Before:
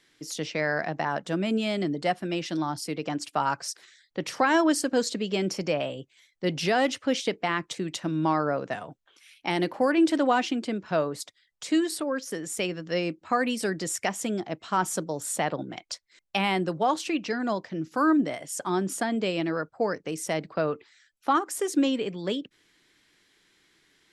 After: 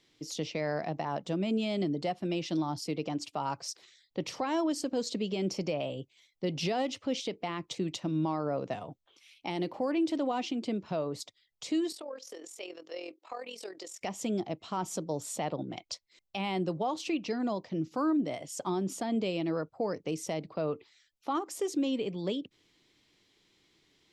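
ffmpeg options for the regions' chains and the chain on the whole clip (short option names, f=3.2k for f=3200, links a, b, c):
-filter_complex "[0:a]asettb=1/sr,asplit=3[a][b][c];[a]atrim=end=11.924[d];[b]atrim=start=11.92:end=14.01,asetpts=PTS-STARTPTS,afade=t=in:d=0.004:c=qsin,afade=t=out:st=2.086:d=0.004:c=qsin,highpass=f=400:w=0.5412,highpass=f=400:w=1.3066,acompressor=threshold=-37dB:ratio=2:attack=3.2:release=140:knee=1:detection=peak,tremolo=f=42:d=0.667[e];[c]atrim=start=14.006[f];[d][e]acrossfade=d=0.004:c1=hsin:c2=qsin[g];[g][f]acrossfade=d=0.004:c1=qsin:c2=hsin,equalizer=f=100:t=o:w=0.67:g=4,equalizer=f=1.6k:t=o:w=0.67:g=-12,equalizer=f=10k:t=o:w=0.67:g=-12,alimiter=limit=-21.5dB:level=0:latency=1:release=165,volume=-1dB"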